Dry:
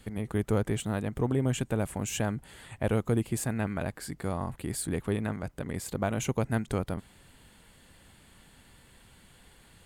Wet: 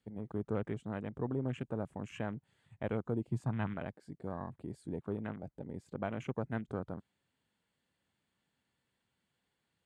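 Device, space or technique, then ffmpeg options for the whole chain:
over-cleaned archive recording: -filter_complex "[0:a]highpass=110,lowpass=6900,afwtdn=0.01,asettb=1/sr,asplit=3[s0][s1][s2];[s0]atrim=end=3.314[s3];[s1]atrim=start=3.31:end=3.74,asetpts=PTS-STARTPTS,afade=t=in:d=0.004:c=qsin,afade=t=out:st=0.426:d=0.004:c=qsin,equalizer=f=125:t=o:w=1:g=9,equalizer=f=500:t=o:w=1:g=-5,equalizer=f=1000:t=o:w=1:g=8,equalizer=f=4000:t=o:w=1:g=4[s4];[s2]atrim=start=3.736[s5];[s3][s4]acrossfade=d=0.004:c1=hsin:c2=qsin[s6];[s6][s5]acrossfade=d=0.004:c1=qsin:c2=hsin,volume=0.422"

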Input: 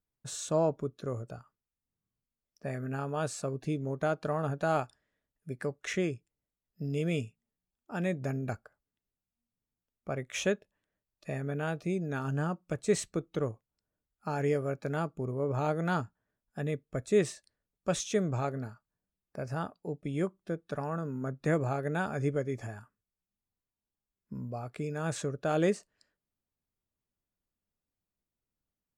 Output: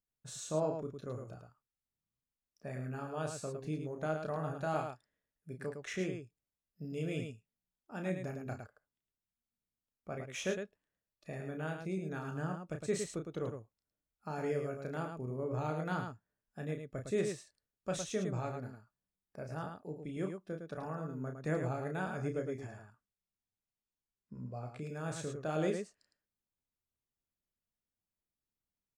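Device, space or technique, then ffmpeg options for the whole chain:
slapback doubling: -filter_complex "[0:a]asplit=3[s0][s1][s2];[s1]adelay=32,volume=0.501[s3];[s2]adelay=109,volume=0.501[s4];[s0][s3][s4]amix=inputs=3:normalize=0,asettb=1/sr,asplit=3[s5][s6][s7];[s5]atrim=end=22.614[s8];[s6]atrim=start=22.61:end=24.82,asetpts=PTS-STARTPTS,afade=t=in:d=0.004:c=qsin,afade=t=out:st=2.206:d=0.004:c=qsin,lowpass=8700[s9];[s7]atrim=start=24.816[s10];[s8][s9]acrossfade=d=0.004:c1=hsin:c2=qsin[s11];[s11][s10]acrossfade=d=0.004:c1=qsin:c2=hsin,volume=0.422"

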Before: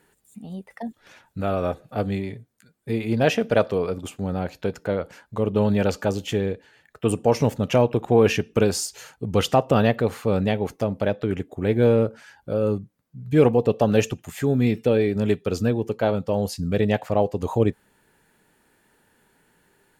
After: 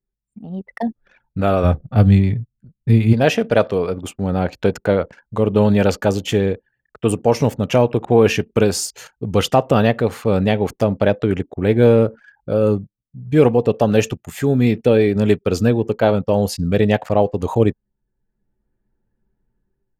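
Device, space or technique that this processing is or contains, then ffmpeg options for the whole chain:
voice memo with heavy noise removal: -filter_complex "[0:a]asplit=3[s0][s1][s2];[s0]afade=t=out:st=1.63:d=0.02[s3];[s1]asubboost=boost=9:cutoff=170,afade=t=in:st=1.63:d=0.02,afade=t=out:st=3.12:d=0.02[s4];[s2]afade=t=in:st=3.12:d=0.02[s5];[s3][s4][s5]amix=inputs=3:normalize=0,anlmdn=0.1,dynaudnorm=f=250:g=5:m=5.01,volume=0.891"

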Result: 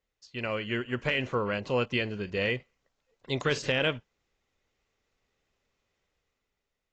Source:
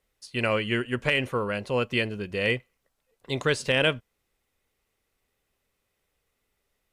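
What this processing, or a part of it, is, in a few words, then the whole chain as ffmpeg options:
low-bitrate web radio: -af "dynaudnorm=f=130:g=13:m=2.37,alimiter=limit=0.398:level=0:latency=1:release=108,volume=0.398" -ar 16000 -c:a aac -b:a 32k

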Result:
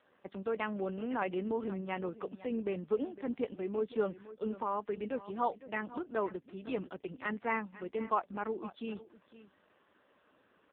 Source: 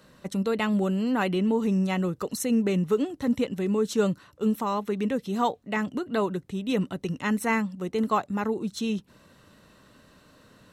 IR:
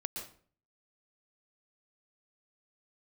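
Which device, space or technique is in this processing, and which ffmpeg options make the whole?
satellite phone: -af "highpass=330,lowpass=3200,aecho=1:1:507:0.158,volume=0.531" -ar 8000 -c:a libopencore_amrnb -b:a 5150

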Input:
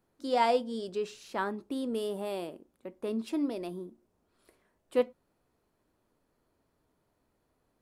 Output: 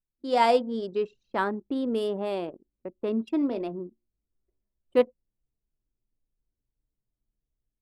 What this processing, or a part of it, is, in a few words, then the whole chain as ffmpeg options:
voice memo with heavy noise removal: -filter_complex "[0:a]asettb=1/sr,asplit=3[s0][s1][s2];[s0]atrim=end=3.384[s3];[s1]atrim=start=3.38:end=3.8,asetpts=PTS-STARTPTS,afade=t=in:d=0.004:c=qsin,afade=t=out:st=0.416:d=0.004:c=qsin,asplit=2[s4][s5];[s5]adelay=36,volume=0.335[s6];[s4][s6]amix=inputs=2:normalize=0,atrim=end_sample=18522[s7];[s2]atrim=start=3.796[s8];[s3][s7]acrossfade=d=0.004:c1=hsin:c2=qsin[s9];[s9][s8]acrossfade=d=0.004:c1=qsin:c2=hsin,anlmdn=0.398,dynaudnorm=f=120:g=5:m=2.51,volume=0.75"

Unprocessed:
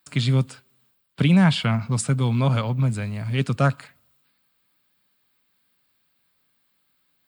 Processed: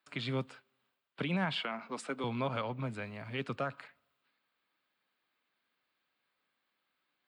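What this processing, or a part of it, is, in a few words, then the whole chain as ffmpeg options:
DJ mixer with the lows and highs turned down: -filter_complex "[0:a]asettb=1/sr,asplit=3[s0][s1][s2];[s0]atrim=end=1.634[s3];[s1]atrim=start=1.63:end=2.24,asetpts=PTS-STARTPTS,afade=t=in:d=0.004:c=qsin,afade=t=out:st=0.606:d=0.004:c=qsin,highpass=f=230:w=0.5412,highpass=f=230:w=1.3066[s4];[s2]atrim=start=2.236[s5];[s3][s4]acrossfade=d=0.004:c1=hsin:c2=qsin[s6];[s6][s5]acrossfade=d=0.004:c1=qsin:c2=hsin,acrossover=split=280 3800:gain=0.178 1 0.141[s7][s8][s9];[s7][s8][s9]amix=inputs=3:normalize=0,alimiter=limit=0.126:level=0:latency=1:release=110,volume=0.531"

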